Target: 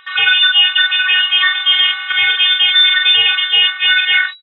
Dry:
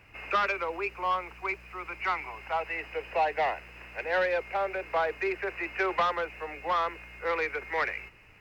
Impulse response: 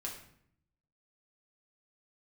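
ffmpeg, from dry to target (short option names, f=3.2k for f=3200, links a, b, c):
-filter_complex "[0:a]agate=range=-40dB:threshold=-49dB:ratio=16:detection=peak,bandreject=f=60:t=h:w=6,bandreject=f=120:t=h:w=6,bandreject=f=180:t=h:w=6,bandreject=f=240:t=h:w=6,atempo=1.9,areverse,acompressor=threshold=-35dB:ratio=6,areverse,afftfilt=real='hypot(re,im)*cos(PI*b)':imag='0':win_size=512:overlap=0.75,lowpass=f=3.3k:t=q:w=0.5098,lowpass=f=3.3k:t=q:w=0.6013,lowpass=f=3.3k:t=q:w=0.9,lowpass=f=3.3k:t=q:w=2.563,afreqshift=-3900,acrossover=split=100[a][b];[a]acrusher=samples=39:mix=1:aa=0.000001:lfo=1:lforange=23.4:lforate=1.9[c];[b]aecho=1:1:29|45:0.335|0.631[d];[c][d]amix=inputs=2:normalize=0,acompressor=mode=upward:threshold=-53dB:ratio=2.5,alimiter=level_in=30.5dB:limit=-1dB:release=50:level=0:latency=1,volume=-1dB"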